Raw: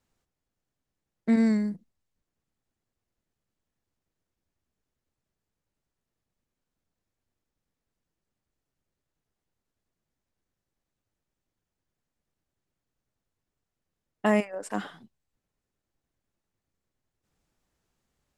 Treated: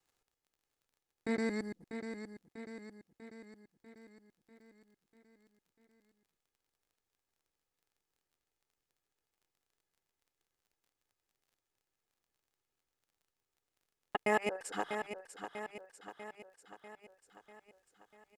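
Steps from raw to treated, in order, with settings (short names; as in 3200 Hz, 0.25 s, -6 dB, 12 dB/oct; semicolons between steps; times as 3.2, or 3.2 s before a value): local time reversal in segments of 0.115 s; low shelf 260 Hz -11.5 dB; comb 2.4 ms, depth 43%; crackle 21/s -57 dBFS; on a send: feedback echo 0.644 s, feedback 57%, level -8.5 dB; on the sum: gain -3 dB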